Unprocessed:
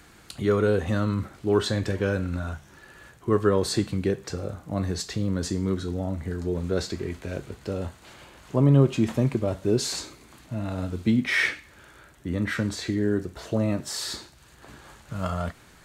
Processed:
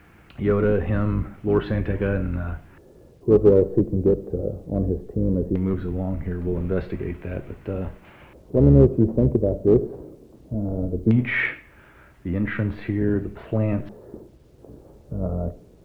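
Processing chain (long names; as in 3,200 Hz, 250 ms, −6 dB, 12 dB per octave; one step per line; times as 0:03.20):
sub-octave generator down 1 octave, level −6 dB
head-to-tape spacing loss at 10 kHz 42 dB
auto-filter low-pass square 0.18 Hz 480–2,600 Hz
in parallel at −8 dB: asymmetric clip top −18 dBFS, bottom −10 dBFS
on the sum: bit reduction 11 bits
on a send at −19 dB: tilt shelving filter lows +7 dB + convolution reverb RT60 0.45 s, pre-delay 35 ms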